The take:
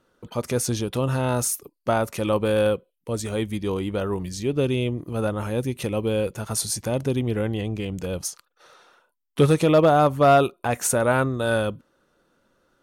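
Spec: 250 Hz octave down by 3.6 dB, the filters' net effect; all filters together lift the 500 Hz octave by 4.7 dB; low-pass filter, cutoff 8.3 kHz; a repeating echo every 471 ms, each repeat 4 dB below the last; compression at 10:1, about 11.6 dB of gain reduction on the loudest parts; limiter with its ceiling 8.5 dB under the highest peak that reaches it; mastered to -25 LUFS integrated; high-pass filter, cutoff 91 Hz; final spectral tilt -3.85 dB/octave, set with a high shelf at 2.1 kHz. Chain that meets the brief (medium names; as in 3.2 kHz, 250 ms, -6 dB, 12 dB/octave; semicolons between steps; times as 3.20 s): high-pass 91 Hz; low-pass 8.3 kHz; peaking EQ 250 Hz -7.5 dB; peaking EQ 500 Hz +6.5 dB; treble shelf 2.1 kHz +9 dB; compression 10:1, threshold -20 dBFS; peak limiter -17 dBFS; feedback delay 471 ms, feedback 63%, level -4 dB; trim +1 dB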